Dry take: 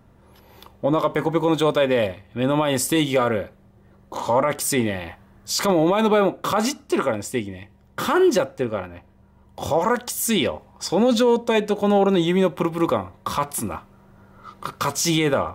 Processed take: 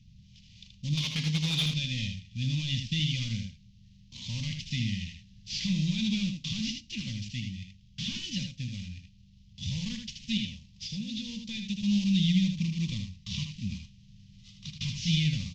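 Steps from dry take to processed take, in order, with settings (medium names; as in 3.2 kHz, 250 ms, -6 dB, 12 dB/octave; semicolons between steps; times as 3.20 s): CVSD coder 32 kbps; elliptic band-stop 180–2800 Hz, stop band 40 dB; 0.97–1.66 s: overdrive pedal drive 18 dB, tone 4.5 kHz, clips at -19 dBFS; 10.37–11.69 s: compression 2.5:1, threshold -37 dBFS, peak gain reduction 9 dB; on a send: delay 78 ms -6 dB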